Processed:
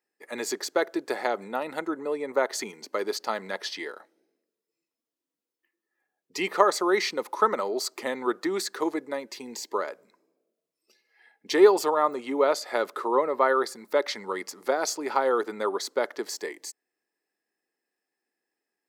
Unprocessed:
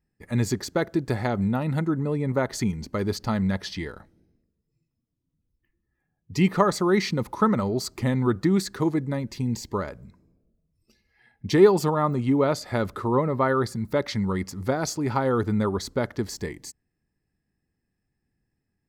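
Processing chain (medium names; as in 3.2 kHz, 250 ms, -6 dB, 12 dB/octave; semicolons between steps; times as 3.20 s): high-pass 380 Hz 24 dB/octave; trim +1.5 dB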